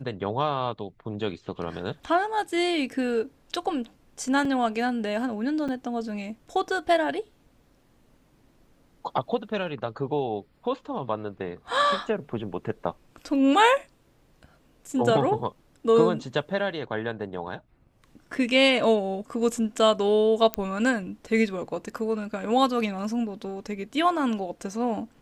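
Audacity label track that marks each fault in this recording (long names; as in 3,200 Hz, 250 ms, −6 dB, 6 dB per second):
4.450000	4.450000	drop-out 3.1 ms
5.680000	5.690000	drop-out 5.5 ms
20.540000	20.540000	click −9 dBFS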